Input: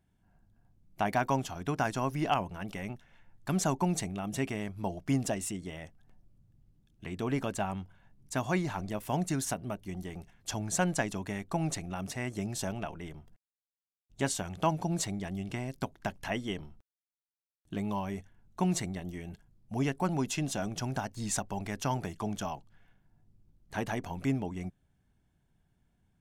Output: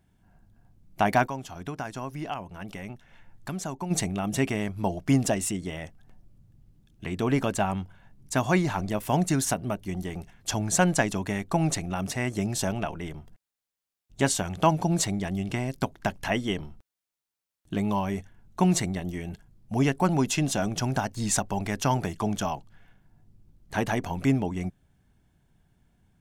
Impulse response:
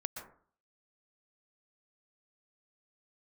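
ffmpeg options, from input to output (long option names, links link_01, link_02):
-filter_complex "[0:a]asplit=3[link_01][link_02][link_03];[link_01]afade=type=out:start_time=1.26:duration=0.02[link_04];[link_02]acompressor=threshold=-47dB:ratio=2,afade=type=in:start_time=1.26:duration=0.02,afade=type=out:start_time=3.9:duration=0.02[link_05];[link_03]afade=type=in:start_time=3.9:duration=0.02[link_06];[link_04][link_05][link_06]amix=inputs=3:normalize=0,volume=7dB"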